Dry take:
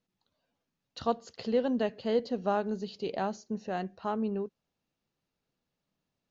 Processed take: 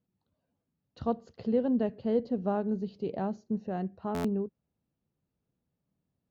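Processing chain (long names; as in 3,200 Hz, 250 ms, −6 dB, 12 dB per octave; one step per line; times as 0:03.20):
high-pass filter 73 Hz 12 dB per octave
spectral tilt −4 dB per octave
buffer that repeats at 0:04.14, samples 512, times 8
level −5 dB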